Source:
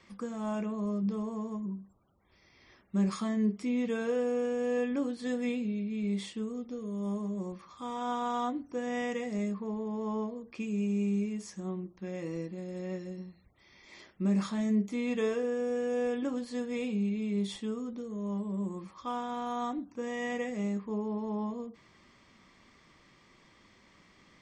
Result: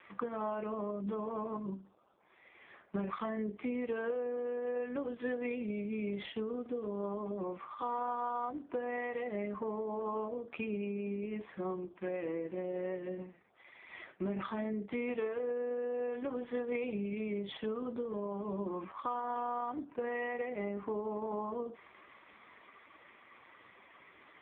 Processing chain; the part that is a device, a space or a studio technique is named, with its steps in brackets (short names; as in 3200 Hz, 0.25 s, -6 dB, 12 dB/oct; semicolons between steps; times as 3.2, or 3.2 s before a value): voicemail (BPF 430–2800 Hz; compressor 10:1, threshold -43 dBFS, peak gain reduction 14.5 dB; gain +10.5 dB; AMR-NB 4.75 kbps 8000 Hz)